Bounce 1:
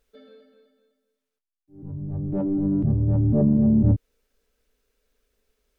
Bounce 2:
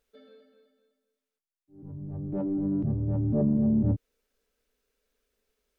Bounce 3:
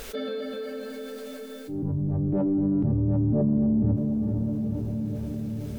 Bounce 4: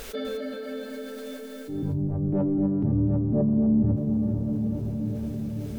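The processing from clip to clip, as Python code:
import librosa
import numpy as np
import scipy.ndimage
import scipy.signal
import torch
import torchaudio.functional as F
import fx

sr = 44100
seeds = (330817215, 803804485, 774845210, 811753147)

y1 = fx.low_shelf(x, sr, hz=110.0, db=-7.0)
y1 = y1 * 10.0 ** (-4.0 / 20.0)
y2 = fx.echo_diffused(y1, sr, ms=475, feedback_pct=43, wet_db=-13.0)
y2 = fx.env_flatten(y2, sr, amount_pct=70)
y3 = y2 + 10.0 ** (-9.5 / 20.0) * np.pad(y2, (int(250 * sr / 1000.0), 0))[:len(y2)]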